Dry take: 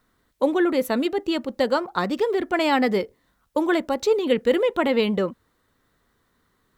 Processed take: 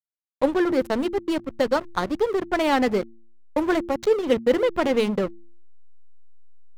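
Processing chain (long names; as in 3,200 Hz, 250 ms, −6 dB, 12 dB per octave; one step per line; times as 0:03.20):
slack as between gear wheels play −21 dBFS
hum removal 114.4 Hz, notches 3
level +1 dB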